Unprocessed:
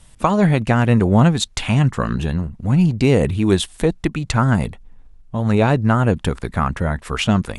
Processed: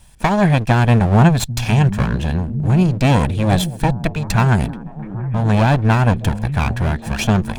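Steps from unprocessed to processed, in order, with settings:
lower of the sound and its delayed copy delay 1.2 ms
echo through a band-pass that steps 797 ms, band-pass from 150 Hz, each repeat 0.7 octaves, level −8 dB
level +1.5 dB

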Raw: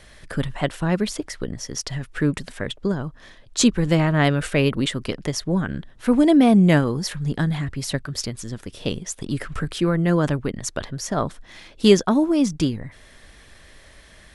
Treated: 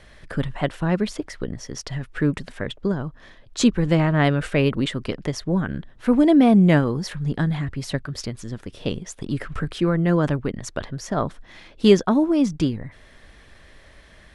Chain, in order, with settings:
high-shelf EQ 5,300 Hz −11 dB

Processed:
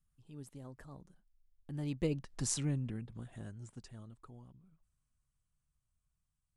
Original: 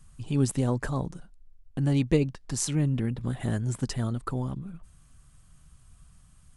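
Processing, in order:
source passing by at 0:02.42, 16 m/s, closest 3.5 metres
level −5 dB

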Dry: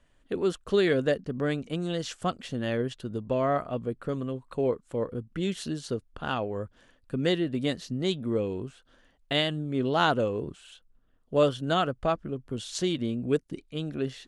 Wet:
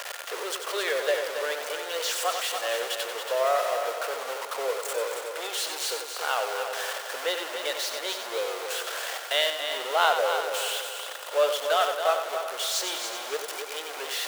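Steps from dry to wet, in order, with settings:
converter with a step at zero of −26 dBFS
steady tone 1,400 Hz −47 dBFS
Butterworth high-pass 510 Hz 36 dB per octave
echo machine with several playback heads 93 ms, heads first and third, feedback 55%, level −8 dB

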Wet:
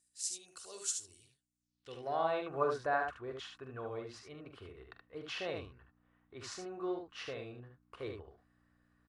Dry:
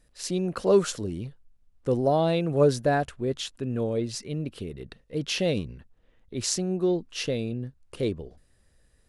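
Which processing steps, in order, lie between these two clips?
low shelf with overshoot 130 Hz +12.5 dB, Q 1.5
comb filter 2.7 ms, depth 30%
ambience of single reflections 44 ms −11.5 dB, 74 ms −5.5 dB
mains hum 60 Hz, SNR 21 dB
band-pass filter sweep 7,900 Hz → 1,200 Hz, 0:01.57–0:02.26
level +1 dB

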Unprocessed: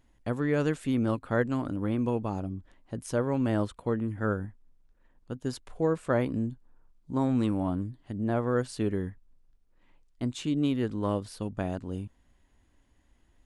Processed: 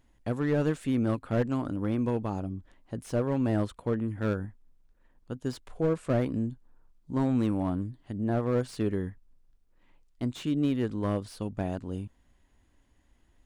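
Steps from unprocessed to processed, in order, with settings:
slew-rate limiting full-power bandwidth 40 Hz

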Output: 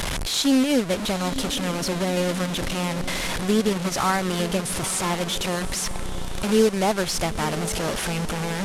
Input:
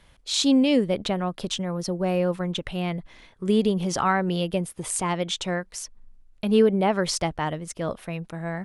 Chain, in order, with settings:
linear delta modulator 64 kbit/s, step −20.5 dBFS
feedback delay with all-pass diffusion 924 ms, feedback 61%, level −13 dB
transient designer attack 0 dB, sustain −7 dB

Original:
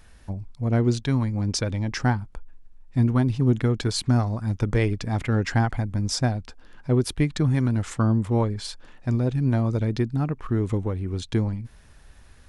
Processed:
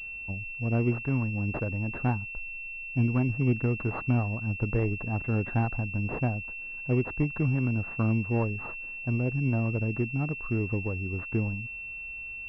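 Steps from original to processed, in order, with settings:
switching amplifier with a slow clock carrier 2,700 Hz
level −5 dB

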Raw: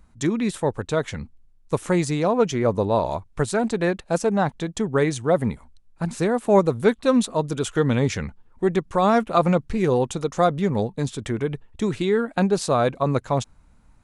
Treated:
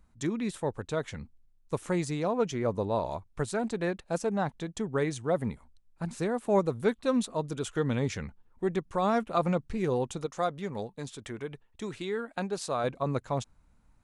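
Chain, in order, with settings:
0:10.26–0:12.84: low-shelf EQ 380 Hz −8 dB
level −8.5 dB

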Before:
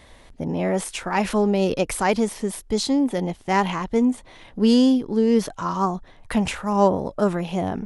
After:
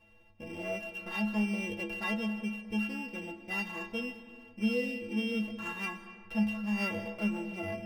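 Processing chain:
samples sorted by size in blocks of 16 samples
low-pass filter 2,400 Hz 6 dB per octave
stiff-string resonator 100 Hz, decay 0.56 s, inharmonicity 0.03
convolution reverb RT60 1.9 s, pre-delay 105 ms, DRR 11.5 dB

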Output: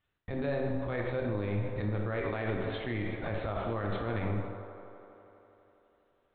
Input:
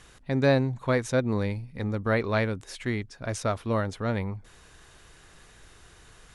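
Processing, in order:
noise gate −42 dBFS, range −33 dB
reversed playback
downward compressor 6 to 1, threshold −33 dBFS, peak gain reduction 15.5 dB
reversed playback
linear-prediction vocoder at 8 kHz pitch kept
on a send: delay with a band-pass on its return 82 ms, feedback 85%, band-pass 720 Hz, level −12 dB
on the sum: coupled-rooms reverb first 0.98 s, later 2.5 s, DRR 1.5 dB
brickwall limiter −28 dBFS, peak gain reduction 8.5 dB
level +4.5 dB

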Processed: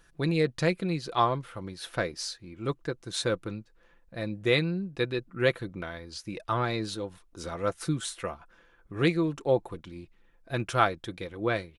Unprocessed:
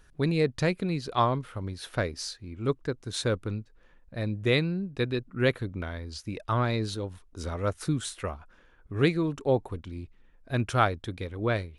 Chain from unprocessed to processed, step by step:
low-shelf EQ 180 Hz −7 dB
comb filter 5.9 ms, depth 42%

